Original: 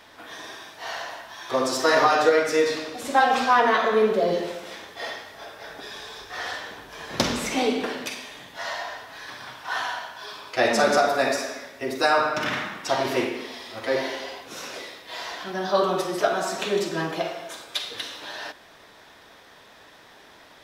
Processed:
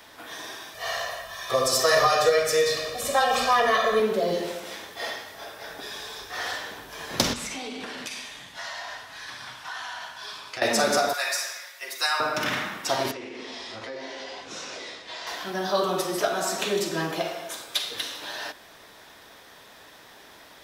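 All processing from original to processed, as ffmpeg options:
-filter_complex "[0:a]asettb=1/sr,asplit=3[a][b][c];[a]atrim=end=0.744[d];[b]atrim=start=0.74:end=4,asetpts=PTS-STARTPTS,afade=t=in:d=0.004:c=qsin,afade=t=out:st=3.256:d=0.004:c=qsin,lowshelf=f=65:g=11.5,aecho=1:1:1.7:0.77,atrim=end_sample=143766[e];[c]atrim=start=3.996[f];[d][e]acrossfade=d=0.004:c1=hsin:c2=qsin[g];[g][f]acrossfade=d=0.004:c1=qsin:c2=hsin,asettb=1/sr,asplit=3[h][i][j];[h]atrim=end=7.334[k];[i]atrim=start=7.33:end=10.62,asetpts=PTS-STARTPTS,afade=t=in:d=0.004:c=qsin,afade=t=out:st=3.286:d=0.004:c=qsin,lowpass=9.5k,equalizer=f=420:t=o:w=1.8:g=-7,acompressor=threshold=-32dB:ratio=6:attack=3.2:release=140:knee=1:detection=peak[l];[j]atrim=start=10.616[m];[k][l]acrossfade=d=0.004:c1=hsin:c2=qsin[n];[n][m]acrossfade=d=0.004:c1=qsin:c2=hsin,asettb=1/sr,asplit=3[o][p][q];[o]atrim=end=11.134[r];[p]atrim=start=11.13:end=12.2,asetpts=PTS-STARTPTS,afade=t=in:d=0.004:c=qsin,afade=t=out:st=1.066:d=0.004:c=qsin,highpass=1.3k,aecho=1:1:5.6:0.41,atrim=end_sample=47187[s];[q]atrim=start=12.196[t];[r][s]acrossfade=d=0.004:c1=hsin:c2=qsin[u];[u][t]acrossfade=d=0.004:c1=qsin:c2=hsin,asettb=1/sr,asplit=3[v][w][x];[v]atrim=end=13.114[y];[w]atrim=start=13.11:end=15.27,asetpts=PTS-STARTPTS,afade=t=in:d=0.004:c=qsin,afade=t=out:st=2.156:d=0.004:c=qsin,lowpass=f=7.2k:w=0.5412,lowpass=f=7.2k:w=1.3066,acompressor=threshold=-34dB:ratio=10:attack=3.2:release=140:knee=1:detection=peak,asplit=2[z][aa];[aa]adelay=19,volume=-10.5dB[ab];[z][ab]amix=inputs=2:normalize=0,atrim=end_sample=95256[ac];[x]atrim=start=15.266[ad];[y][ac]acrossfade=d=0.004:c1=hsin:c2=qsin[ae];[ae][ad]acrossfade=d=0.004:c1=qsin:c2=hsin,highshelf=f=7.7k:g=10,acrossover=split=160|3000[af][ag][ah];[ag]acompressor=threshold=-26dB:ratio=1.5[ai];[af][ai][ah]amix=inputs=3:normalize=0"

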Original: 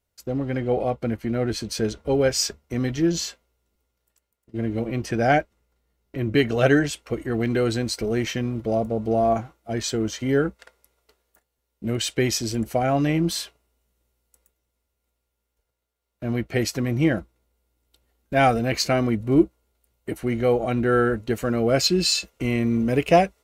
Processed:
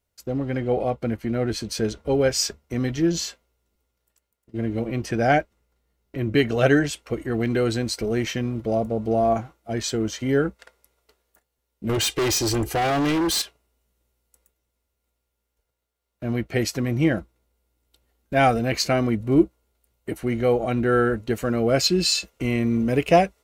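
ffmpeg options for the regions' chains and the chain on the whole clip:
-filter_complex "[0:a]asettb=1/sr,asplit=3[a][b][c];[a]atrim=end=11.894[d];[b]atrim=start=11.89:end=13.42,asetpts=PTS-STARTPTS,afade=t=in:d=0.004:c=qsin,afade=t=out:st=1.526:d=0.004:c=qsin,aecho=1:1:2.5:0.91,atrim=end_sample=67473,acontrast=30,asoftclip=type=hard:threshold=-20dB[e];[c]atrim=start=13.416[f];[d][e]acrossfade=d=0.004:c1=hsin:c2=qsin[g];[g][f]acrossfade=d=0.004:c1=qsin:c2=hsin"

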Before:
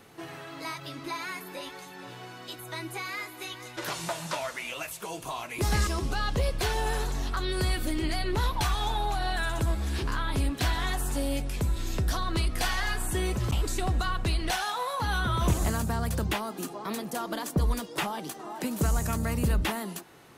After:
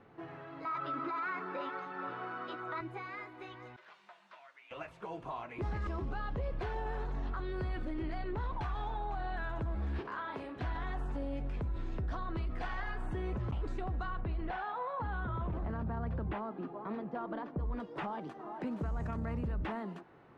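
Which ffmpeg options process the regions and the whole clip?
-filter_complex "[0:a]asettb=1/sr,asplit=3[a][b][c];[a]atrim=end=0.654[d];[b]atrim=start=0.65:end=2.81,asetpts=PTS-STARTPTS,afade=t=in:d=0.004:c=qsin,afade=t=out:st=2.156:d=0.004:c=qsin,equalizer=f=1.3k:t=o:w=0.32:g=14.5,acontrast=49,highpass=210,lowpass=5.8k[e];[c]atrim=start=2.806[f];[d][e]acrossfade=d=0.004:c1=hsin:c2=qsin[g];[g][f]acrossfade=d=0.004:c1=qsin:c2=hsin,asettb=1/sr,asplit=3[h][i][j];[h]atrim=end=3.764[k];[i]atrim=start=3.76:end=4.71,asetpts=PTS-STARTPTS,afade=t=in:d=0.004:c=qsin,afade=t=out:st=0.946:d=0.004:c=qsin,acrossover=split=4000[l][m];[m]acompressor=threshold=-54dB:ratio=4:attack=1:release=60[n];[l][n]amix=inputs=2:normalize=0,afreqshift=31,aderivative[o];[j]atrim=start=4.706[p];[k][o]acrossfade=d=0.004:c1=hsin:c2=qsin[q];[q][p]acrossfade=d=0.004:c1=qsin:c2=hsin,asettb=1/sr,asplit=3[r][s][t];[r]atrim=end=10.014[u];[s]atrim=start=10.01:end=10.56,asetpts=PTS-STARTPTS,afade=t=in:d=0.004:c=qsin,afade=t=out:st=0.546:d=0.004:c=qsin,highpass=360,asplit=2[v][w];[w]adelay=38,volume=-8dB[x];[v][x]amix=inputs=2:normalize=0,atrim=end_sample=24255[y];[t]atrim=start=10.556[z];[u][y]acrossfade=d=0.004:c1=hsin:c2=qsin[aa];[aa][z]acrossfade=d=0.004:c1=qsin:c2=hsin,asettb=1/sr,asplit=3[ab][ac][ad];[ab]atrim=end=14.204[ae];[ac]atrim=start=14.2:end=17.8,asetpts=PTS-STARTPTS,afade=t=in:d=0.004:c=qsin,afade=t=out:st=3.596:d=0.004:c=qsin,lowpass=f=4.9k:w=0.5412,lowpass=f=4.9k:w=1.3066,highshelf=f=3.5k:g=-10.5[af];[ad]atrim=start=17.796[ag];[ae][af]acrossfade=d=0.004:c1=hsin:c2=qsin[ah];[ah][ag]acrossfade=d=0.004:c1=qsin:c2=hsin,lowpass=1.6k,alimiter=level_in=1.5dB:limit=-24dB:level=0:latency=1:release=15,volume=-1.5dB,volume=-4.5dB"

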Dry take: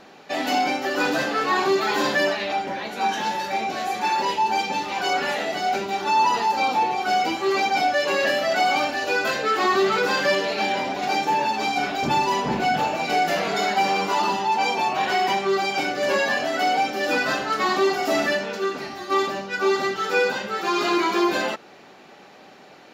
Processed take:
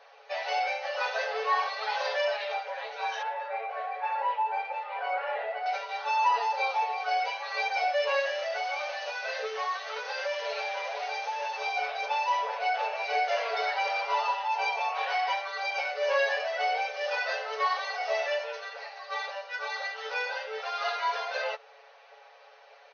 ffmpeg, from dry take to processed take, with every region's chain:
-filter_complex "[0:a]asettb=1/sr,asplit=3[a][b][c];[a]atrim=end=3.224[d];[b]atrim=start=3.22:end=5.66,asetpts=PTS-STARTPTS,afade=t=in:d=0.004:c=qsin,afade=t=out:st=2.436:d=0.004:c=qsin,lowpass=2.2k,aemphasis=mode=reproduction:type=50fm[e];[c]atrim=start=5.656[f];[d][e]acrossfade=d=0.004:c1=hsin:c2=qsin[g];[g][f]acrossfade=d=0.004:c1=qsin:c2=hsin,asettb=1/sr,asplit=3[h][i][j];[h]atrim=end=8.194[k];[i]atrim=start=8.19:end=11.66,asetpts=PTS-STARTPTS,afade=t=in:d=0.004:c=qsin,afade=t=out:st=3.466:d=0.004:c=qsin,acompressor=threshold=-22dB:ratio=6:attack=3.2:release=140:knee=1:detection=peak,acrusher=bits=6:dc=4:mix=0:aa=0.000001[l];[j]atrim=start=11.656[m];[k][l]acrossfade=d=0.004:c1=hsin:c2=qsin[n];[n][m]acrossfade=d=0.004:c1=qsin:c2=hsin,afftfilt=real='re*between(b*sr/4096,430,6500)':imag='im*between(b*sr/4096,430,6500)':win_size=4096:overlap=0.75,highshelf=f=4.7k:g=-8,aecho=1:1:7.2:0.87,volume=-7.5dB"

